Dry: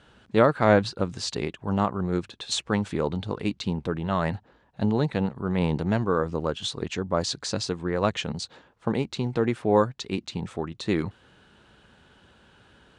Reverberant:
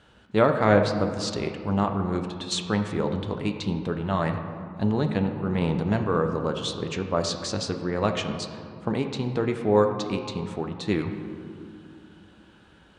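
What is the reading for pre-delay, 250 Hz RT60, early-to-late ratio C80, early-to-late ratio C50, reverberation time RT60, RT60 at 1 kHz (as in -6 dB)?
7 ms, 3.6 s, 8.5 dB, 7.0 dB, 2.5 s, 2.5 s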